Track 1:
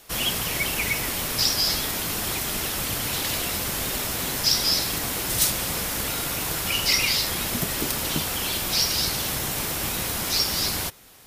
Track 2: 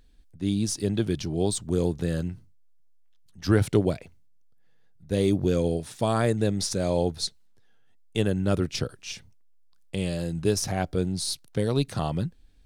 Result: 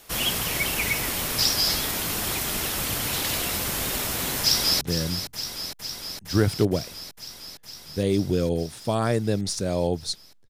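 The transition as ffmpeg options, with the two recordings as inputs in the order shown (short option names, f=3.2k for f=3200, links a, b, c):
-filter_complex "[0:a]apad=whole_dur=10.49,atrim=end=10.49,atrim=end=4.812[a];[1:a]atrim=start=1.948:end=7.63[b];[a][b]acrossfade=d=0.004:c1=hsin:c2=hsin,asplit=2[c][d];[d]afade=t=in:st=4.41:d=0.01,afade=t=out:st=4.81:d=0.01,aecho=0:1:460|920|1380|1840|2300|2760|3220|3680|4140|4600|5060|5520:0.354813|0.283851|0.227081|0.181664|0.145332|0.116265|0.0930122|0.0744098|0.0595278|0.0476222|0.0380978|0.0304782[e];[c][e]amix=inputs=2:normalize=0"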